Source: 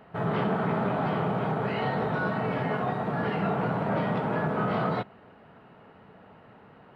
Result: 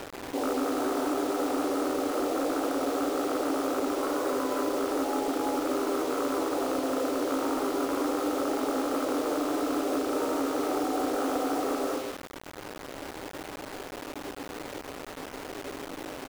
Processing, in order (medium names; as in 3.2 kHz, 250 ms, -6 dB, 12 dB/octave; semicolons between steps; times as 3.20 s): rattle on loud lows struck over -32 dBFS, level -21 dBFS; in parallel at -2 dB: upward compressor, threshold -30 dBFS; on the sum: delay 98 ms -11.5 dB; on a send at -2 dB: reverberation RT60 0.35 s, pre-delay 52 ms; on the sum: speed mistake 78 rpm record played at 33 rpm; treble shelf 2.9 kHz -8.5 dB; frequency shift +210 Hz; compression 10:1, threshold -22 dBFS, peak gain reduction 8.5 dB; saturation -16.5 dBFS, distortion -23 dB; word length cut 6-bit, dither none; trim -2 dB